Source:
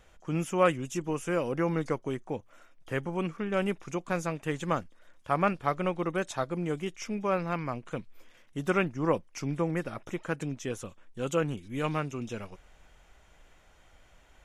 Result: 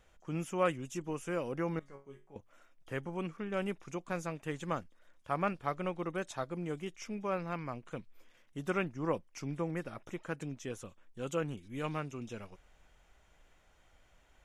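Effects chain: 1.79–2.36 resonator bank C#3 sus4, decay 0.3 s; gain -6.5 dB

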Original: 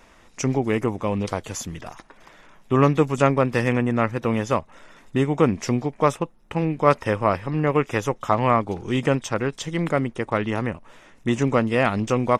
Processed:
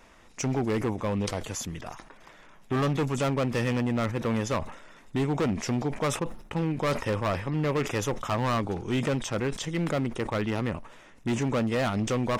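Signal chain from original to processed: overloaded stage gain 19.5 dB; sustainer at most 97 dB/s; gain -3 dB

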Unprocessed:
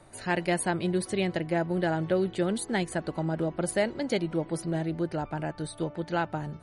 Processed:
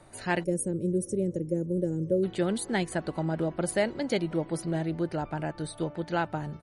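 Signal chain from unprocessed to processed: outdoor echo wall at 93 m, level -29 dB; spectral gain 0.43–2.24, 590–5300 Hz -27 dB

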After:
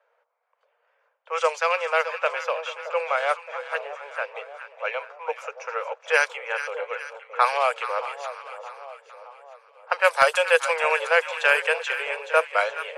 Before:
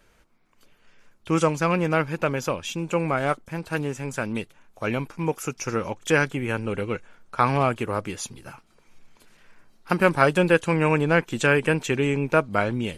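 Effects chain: steep high-pass 470 Hz 96 dB/oct; low-pass opened by the level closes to 950 Hz, open at -16.5 dBFS; high shelf 2400 Hz +8.5 dB; wavefolder -5 dBFS; split-band echo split 950 Hz, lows 0.62 s, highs 0.426 s, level -11 dB

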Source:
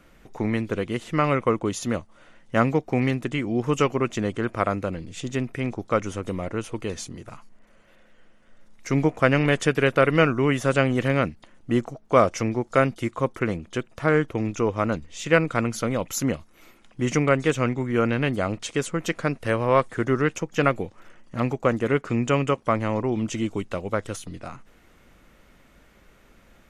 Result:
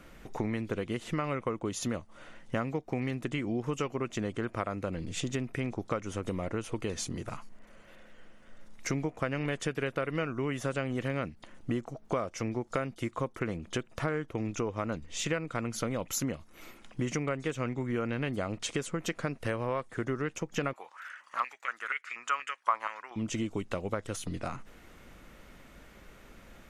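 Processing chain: compressor 6:1, threshold -32 dBFS, peak gain reduction 19 dB; 20.73–23.16 stepped high-pass 4.2 Hz 1000–2100 Hz; gain +2 dB

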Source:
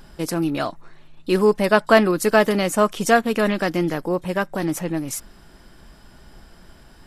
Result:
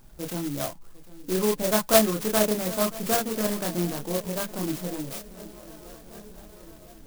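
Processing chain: swung echo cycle 1.002 s, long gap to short 3:1, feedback 62%, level -20 dB; chorus voices 4, 0.62 Hz, delay 28 ms, depth 1.1 ms; clock jitter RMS 0.13 ms; gain -4 dB

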